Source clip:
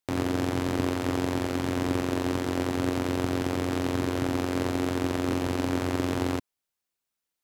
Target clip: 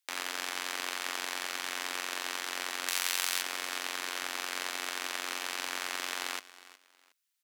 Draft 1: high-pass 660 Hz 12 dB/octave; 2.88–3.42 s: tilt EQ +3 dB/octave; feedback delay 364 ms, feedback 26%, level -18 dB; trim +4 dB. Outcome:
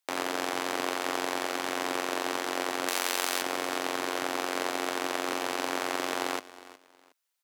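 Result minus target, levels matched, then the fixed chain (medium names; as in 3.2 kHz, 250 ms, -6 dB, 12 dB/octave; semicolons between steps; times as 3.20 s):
500 Hz band +10.5 dB
high-pass 1.6 kHz 12 dB/octave; 2.88–3.42 s: tilt EQ +3 dB/octave; feedback delay 364 ms, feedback 26%, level -18 dB; trim +4 dB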